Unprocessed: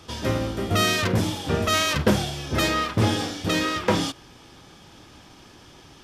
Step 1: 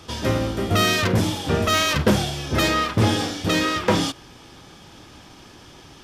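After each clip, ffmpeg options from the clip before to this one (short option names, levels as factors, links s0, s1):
-af "acontrast=84,volume=0.631"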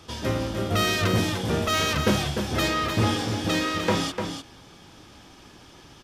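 -af "aecho=1:1:299:0.473,volume=0.596"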